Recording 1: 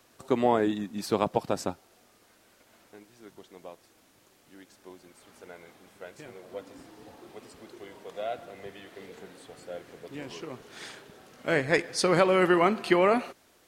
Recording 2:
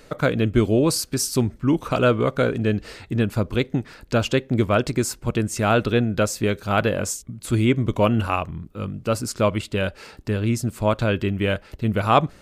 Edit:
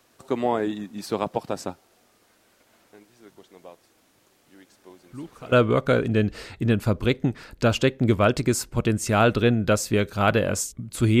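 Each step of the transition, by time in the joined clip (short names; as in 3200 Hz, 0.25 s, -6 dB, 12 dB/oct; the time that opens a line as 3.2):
recording 1
5.11 add recording 2 from 1.61 s 0.41 s -18 dB
5.52 switch to recording 2 from 2.02 s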